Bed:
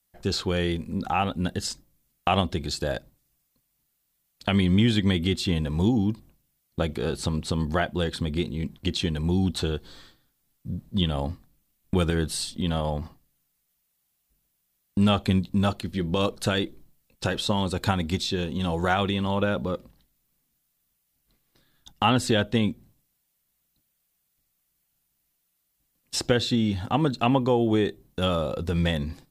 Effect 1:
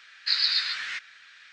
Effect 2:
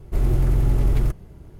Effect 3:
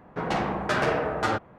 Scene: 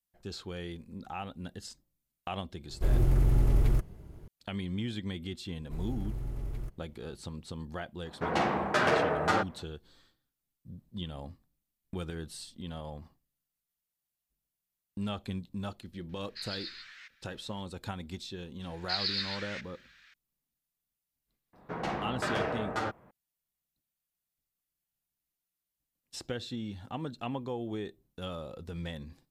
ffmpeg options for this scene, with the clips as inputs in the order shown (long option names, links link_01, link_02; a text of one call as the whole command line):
ffmpeg -i bed.wav -i cue0.wav -i cue1.wav -i cue2.wav -filter_complex "[2:a]asplit=2[link_01][link_02];[3:a]asplit=2[link_03][link_04];[1:a]asplit=2[link_05][link_06];[0:a]volume=-14.5dB[link_07];[link_03]highpass=frequency=180:poles=1[link_08];[link_01]atrim=end=1.59,asetpts=PTS-STARTPTS,volume=-5.5dB,afade=type=in:duration=0.004:curve=hsin,afade=type=out:start_time=1.586:duration=0.004:curve=hsin,adelay=2690[link_09];[link_02]atrim=end=1.59,asetpts=PTS-STARTPTS,volume=-18dB,afade=type=in:duration=0.004:curve=hsin,afade=type=out:start_time=1.586:duration=0.004:curve=hsin,adelay=5580[link_10];[link_08]atrim=end=1.58,asetpts=PTS-STARTPTS,volume=-1dB,afade=type=in:duration=0.004:curve=hsin,afade=type=out:start_time=1.576:duration=0.004:curve=hsin,adelay=8050[link_11];[link_05]atrim=end=1.52,asetpts=PTS-STARTPTS,volume=-17.5dB,afade=type=in:duration=0.004:curve=hsin,afade=type=out:start_time=1.516:duration=0.004:curve=hsin,adelay=16090[link_12];[link_06]atrim=end=1.52,asetpts=PTS-STARTPTS,volume=-8.5dB,afade=type=in:duration=0.004:curve=hsin,afade=type=out:start_time=1.516:duration=0.004:curve=hsin,adelay=18620[link_13];[link_04]atrim=end=1.58,asetpts=PTS-STARTPTS,volume=-7.5dB,afade=type=in:duration=0.004:curve=hsin,afade=type=out:start_time=1.576:duration=0.004:curve=hsin,adelay=21530[link_14];[link_07][link_09][link_10][link_11][link_12][link_13][link_14]amix=inputs=7:normalize=0" out.wav